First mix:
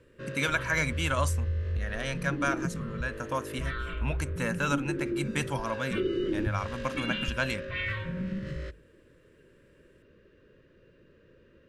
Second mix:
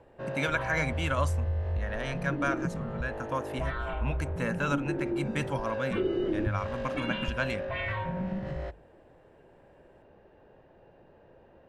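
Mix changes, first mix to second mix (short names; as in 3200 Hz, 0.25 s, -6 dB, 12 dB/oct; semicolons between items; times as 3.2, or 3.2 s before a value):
background: remove Butterworth band-stop 780 Hz, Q 1.1; master: add high shelf 3900 Hz -10 dB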